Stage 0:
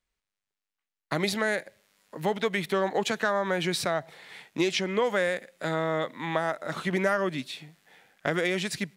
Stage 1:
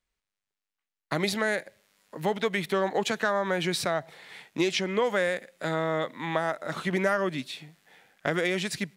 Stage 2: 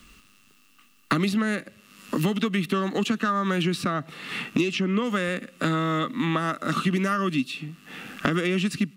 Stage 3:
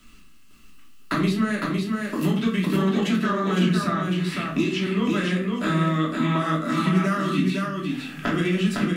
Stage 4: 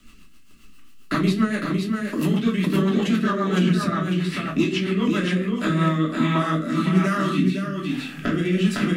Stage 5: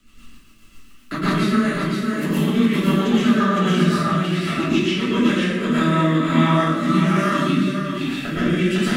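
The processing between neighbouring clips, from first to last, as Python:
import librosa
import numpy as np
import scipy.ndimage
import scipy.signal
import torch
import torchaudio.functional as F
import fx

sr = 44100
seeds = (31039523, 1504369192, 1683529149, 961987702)

y1 = x
y2 = fx.peak_eq(y1, sr, hz=630.0, db=-10.0, octaves=2.8)
y2 = fx.small_body(y2, sr, hz=(250.0, 1200.0, 2700.0), ring_ms=25, db=17)
y2 = fx.band_squash(y2, sr, depth_pct=100)
y3 = y2 + 10.0 ** (-3.5 / 20.0) * np.pad(y2, (int(508 * sr / 1000.0), 0))[:len(y2)]
y3 = fx.room_shoebox(y3, sr, seeds[0], volume_m3=330.0, walls='furnished', distance_m=2.9)
y3 = F.gain(torch.from_numpy(y3), -5.5).numpy()
y4 = fx.rotary_switch(y3, sr, hz=7.5, then_hz=1.2, switch_at_s=5.24)
y4 = F.gain(torch.from_numpy(y4), 3.0).numpy()
y5 = fx.rev_plate(y4, sr, seeds[1], rt60_s=0.83, hf_ratio=0.9, predelay_ms=100, drr_db=-8.0)
y5 = F.gain(torch.from_numpy(y5), -4.5).numpy()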